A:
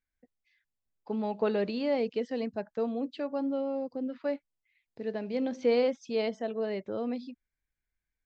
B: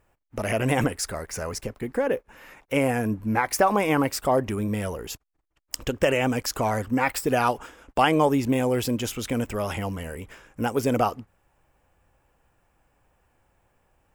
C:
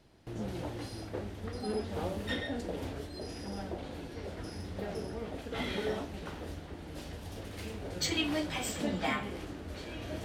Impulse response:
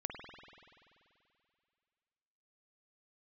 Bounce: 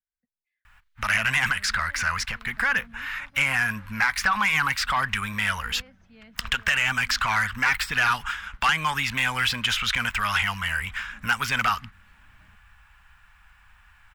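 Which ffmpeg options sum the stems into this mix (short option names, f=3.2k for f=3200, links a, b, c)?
-filter_complex "[0:a]volume=-12.5dB[a];[1:a]equalizer=f=125:t=o:w=1:g=-11,equalizer=f=250:t=o:w=1:g=-11,equalizer=f=500:t=o:w=1:g=-10,equalizer=f=1k:t=o:w=1:g=5,equalizer=f=4k:t=o:w=1:g=10,aeval=exprs='0.841*sin(PI/2*2.24*val(0)/0.841)':c=same,adelay=650,volume=2.5dB[b];[2:a]adelay=2300,volume=-17dB[c];[a][b][c]amix=inputs=3:normalize=0,firequalizer=gain_entry='entry(210,0);entry(330,-20);entry(1500,3);entry(4400,-10)':delay=0.05:min_phase=1,acrossover=split=370|1000|5400[d][e][f][g];[d]acompressor=threshold=-35dB:ratio=4[h];[e]acompressor=threshold=-36dB:ratio=4[i];[f]acompressor=threshold=-18dB:ratio=4[j];[g]acompressor=threshold=-38dB:ratio=4[k];[h][i][j][k]amix=inputs=4:normalize=0,asoftclip=type=tanh:threshold=-13dB"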